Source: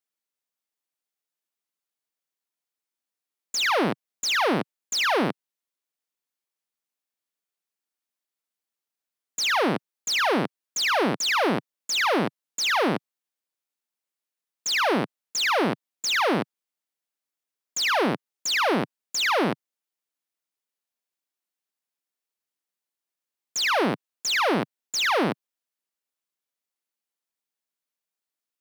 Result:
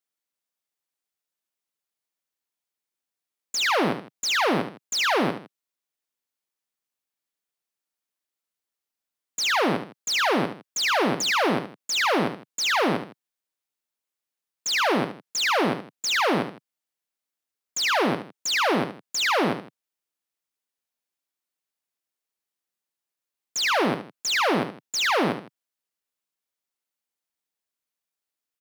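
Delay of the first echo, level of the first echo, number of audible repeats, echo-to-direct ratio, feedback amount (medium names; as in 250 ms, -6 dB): 72 ms, -9.5 dB, 2, -9.0 dB, no regular repeats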